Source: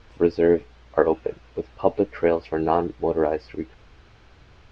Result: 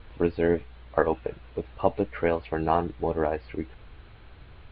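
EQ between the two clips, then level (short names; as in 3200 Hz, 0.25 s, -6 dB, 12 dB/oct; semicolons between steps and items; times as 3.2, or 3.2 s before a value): steep low-pass 4200 Hz 72 dB/oct; low shelf 100 Hz +5.5 dB; dynamic EQ 380 Hz, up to -7 dB, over -30 dBFS, Q 0.96; 0.0 dB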